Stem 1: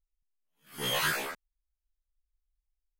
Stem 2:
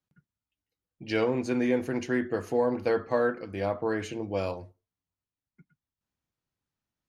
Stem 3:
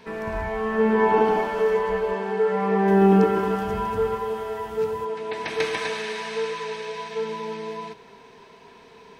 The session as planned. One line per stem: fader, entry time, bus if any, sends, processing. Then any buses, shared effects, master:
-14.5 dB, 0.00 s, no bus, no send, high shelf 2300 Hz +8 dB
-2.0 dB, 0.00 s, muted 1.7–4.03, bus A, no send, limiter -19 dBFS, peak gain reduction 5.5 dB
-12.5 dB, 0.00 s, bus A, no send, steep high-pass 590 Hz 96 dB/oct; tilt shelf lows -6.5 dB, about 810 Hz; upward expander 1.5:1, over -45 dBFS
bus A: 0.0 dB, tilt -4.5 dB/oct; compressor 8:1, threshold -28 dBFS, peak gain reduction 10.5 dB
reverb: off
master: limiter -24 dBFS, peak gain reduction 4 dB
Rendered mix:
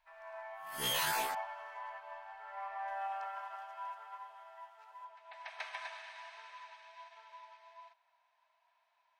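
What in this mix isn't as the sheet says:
stem 1 -14.5 dB -> -7.0 dB; stem 2: muted

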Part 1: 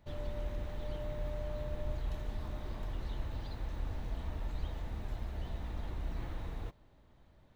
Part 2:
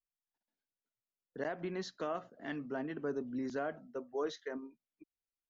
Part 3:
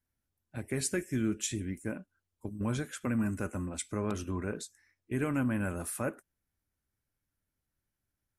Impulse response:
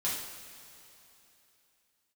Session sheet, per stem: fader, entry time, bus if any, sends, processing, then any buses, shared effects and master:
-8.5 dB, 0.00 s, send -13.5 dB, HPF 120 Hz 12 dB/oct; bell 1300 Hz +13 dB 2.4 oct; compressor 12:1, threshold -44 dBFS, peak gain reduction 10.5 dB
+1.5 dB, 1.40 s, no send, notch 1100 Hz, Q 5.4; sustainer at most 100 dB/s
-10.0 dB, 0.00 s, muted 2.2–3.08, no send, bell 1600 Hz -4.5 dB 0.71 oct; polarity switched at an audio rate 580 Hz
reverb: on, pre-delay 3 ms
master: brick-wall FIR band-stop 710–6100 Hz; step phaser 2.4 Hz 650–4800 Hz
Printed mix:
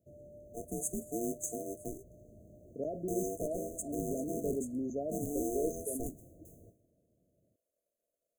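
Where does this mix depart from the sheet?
stem 1: missing bell 1300 Hz +13 dB 2.4 oct; stem 3 -10.0 dB -> -2.0 dB; master: missing step phaser 2.4 Hz 650–4800 Hz

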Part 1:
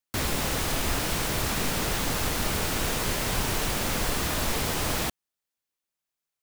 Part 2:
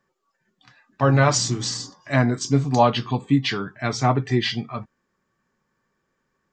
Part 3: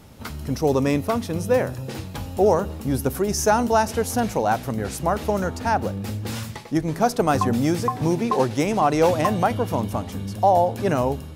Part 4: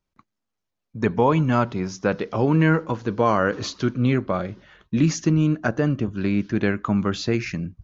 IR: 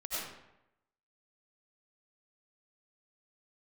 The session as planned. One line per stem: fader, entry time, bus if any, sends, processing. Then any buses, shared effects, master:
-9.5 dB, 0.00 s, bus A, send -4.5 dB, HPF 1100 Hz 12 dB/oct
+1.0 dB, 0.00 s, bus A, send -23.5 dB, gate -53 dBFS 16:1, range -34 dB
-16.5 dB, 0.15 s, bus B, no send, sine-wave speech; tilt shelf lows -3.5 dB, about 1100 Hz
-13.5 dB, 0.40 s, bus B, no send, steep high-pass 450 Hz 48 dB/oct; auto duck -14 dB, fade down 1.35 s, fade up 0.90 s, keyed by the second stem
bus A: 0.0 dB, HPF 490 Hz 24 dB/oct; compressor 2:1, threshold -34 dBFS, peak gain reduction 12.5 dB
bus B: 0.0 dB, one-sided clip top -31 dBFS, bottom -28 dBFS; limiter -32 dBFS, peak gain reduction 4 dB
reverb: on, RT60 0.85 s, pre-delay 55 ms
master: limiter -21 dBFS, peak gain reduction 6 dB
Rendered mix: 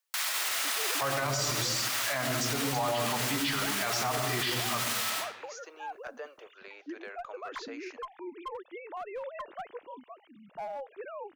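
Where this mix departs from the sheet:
stem 1 -9.5 dB -> +2.0 dB; stem 2 +1.0 dB -> +13.0 dB

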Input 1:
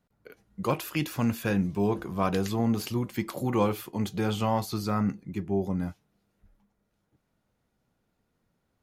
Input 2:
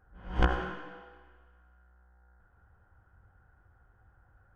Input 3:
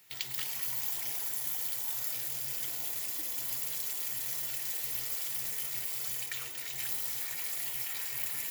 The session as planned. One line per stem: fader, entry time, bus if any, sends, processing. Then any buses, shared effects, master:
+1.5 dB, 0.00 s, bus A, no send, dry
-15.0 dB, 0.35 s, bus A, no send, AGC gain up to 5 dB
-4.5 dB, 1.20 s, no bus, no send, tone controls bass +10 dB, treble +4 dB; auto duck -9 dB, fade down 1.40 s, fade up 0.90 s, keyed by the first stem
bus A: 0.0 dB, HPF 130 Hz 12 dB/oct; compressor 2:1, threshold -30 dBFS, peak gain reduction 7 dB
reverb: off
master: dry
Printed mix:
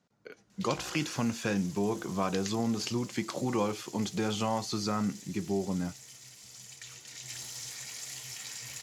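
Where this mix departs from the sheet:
stem 3: entry 1.20 s -> 0.50 s; master: extra synth low-pass 6400 Hz, resonance Q 2.1

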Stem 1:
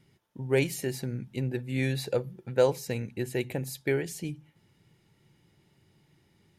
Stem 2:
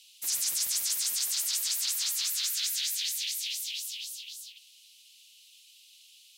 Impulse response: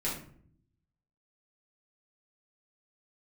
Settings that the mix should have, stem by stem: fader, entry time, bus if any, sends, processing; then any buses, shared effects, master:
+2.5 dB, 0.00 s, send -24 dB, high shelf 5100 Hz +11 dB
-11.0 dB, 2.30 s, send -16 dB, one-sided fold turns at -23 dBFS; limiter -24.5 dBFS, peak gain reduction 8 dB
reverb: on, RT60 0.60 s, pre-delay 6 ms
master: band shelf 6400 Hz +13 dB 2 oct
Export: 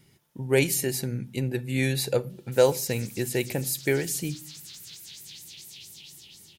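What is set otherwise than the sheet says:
stem 2: send off; master: missing band shelf 6400 Hz +13 dB 2 oct

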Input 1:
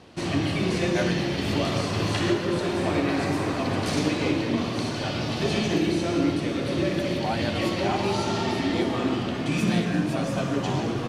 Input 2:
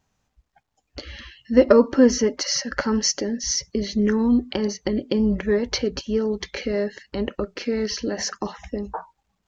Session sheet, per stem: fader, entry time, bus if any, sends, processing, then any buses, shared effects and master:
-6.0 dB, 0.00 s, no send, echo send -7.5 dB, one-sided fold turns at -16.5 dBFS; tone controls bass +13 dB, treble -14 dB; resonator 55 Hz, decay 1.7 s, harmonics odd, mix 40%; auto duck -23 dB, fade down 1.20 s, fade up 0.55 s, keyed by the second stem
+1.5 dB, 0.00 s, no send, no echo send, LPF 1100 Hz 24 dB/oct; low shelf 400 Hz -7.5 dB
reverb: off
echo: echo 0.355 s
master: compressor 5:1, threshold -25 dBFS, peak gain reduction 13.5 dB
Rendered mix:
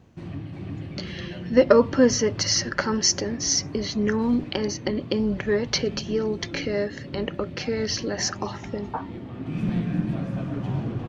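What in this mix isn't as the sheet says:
stem 2: missing LPF 1100 Hz 24 dB/oct; master: missing compressor 5:1, threshold -25 dBFS, peak gain reduction 13.5 dB

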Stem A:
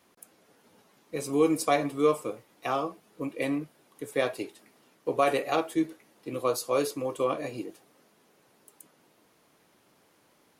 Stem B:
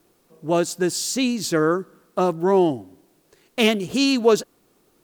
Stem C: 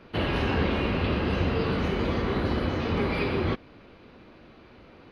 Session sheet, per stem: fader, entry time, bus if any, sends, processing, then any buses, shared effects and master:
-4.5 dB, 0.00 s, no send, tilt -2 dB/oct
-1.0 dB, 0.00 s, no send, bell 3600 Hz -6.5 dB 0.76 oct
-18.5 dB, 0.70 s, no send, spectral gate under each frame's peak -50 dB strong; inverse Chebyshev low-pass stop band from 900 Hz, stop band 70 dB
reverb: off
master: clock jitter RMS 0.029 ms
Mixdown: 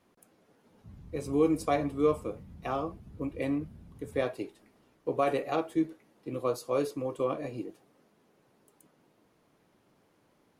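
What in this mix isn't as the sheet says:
stem B: muted; master: missing clock jitter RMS 0.029 ms

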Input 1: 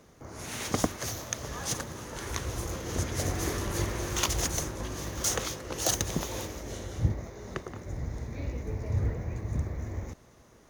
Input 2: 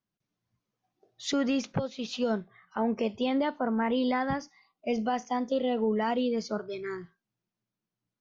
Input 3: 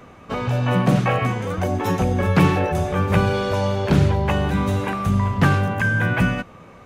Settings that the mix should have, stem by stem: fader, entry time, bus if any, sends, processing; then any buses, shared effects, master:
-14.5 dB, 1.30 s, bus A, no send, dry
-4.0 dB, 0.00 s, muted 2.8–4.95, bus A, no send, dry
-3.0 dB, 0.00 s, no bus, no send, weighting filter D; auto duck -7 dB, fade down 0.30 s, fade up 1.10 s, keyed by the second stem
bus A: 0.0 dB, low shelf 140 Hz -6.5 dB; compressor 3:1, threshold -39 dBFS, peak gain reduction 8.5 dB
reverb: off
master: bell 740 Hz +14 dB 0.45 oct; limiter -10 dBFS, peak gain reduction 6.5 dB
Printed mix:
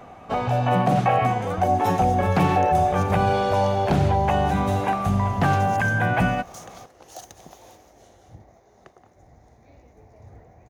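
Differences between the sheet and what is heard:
stem 2: muted; stem 3: missing weighting filter D

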